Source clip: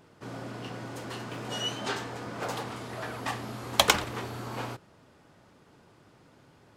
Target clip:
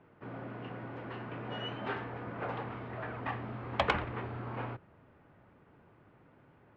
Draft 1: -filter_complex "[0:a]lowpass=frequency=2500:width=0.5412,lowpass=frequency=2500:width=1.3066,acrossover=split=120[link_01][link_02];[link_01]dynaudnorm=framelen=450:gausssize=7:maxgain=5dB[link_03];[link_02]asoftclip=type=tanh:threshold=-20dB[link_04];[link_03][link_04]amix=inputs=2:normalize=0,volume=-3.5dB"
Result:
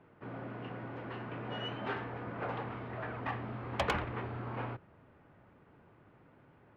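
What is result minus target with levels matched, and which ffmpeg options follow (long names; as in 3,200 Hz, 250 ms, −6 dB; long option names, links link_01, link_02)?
soft clipping: distortion +8 dB
-filter_complex "[0:a]lowpass=frequency=2500:width=0.5412,lowpass=frequency=2500:width=1.3066,acrossover=split=120[link_01][link_02];[link_01]dynaudnorm=framelen=450:gausssize=7:maxgain=5dB[link_03];[link_02]asoftclip=type=tanh:threshold=-10.5dB[link_04];[link_03][link_04]amix=inputs=2:normalize=0,volume=-3.5dB"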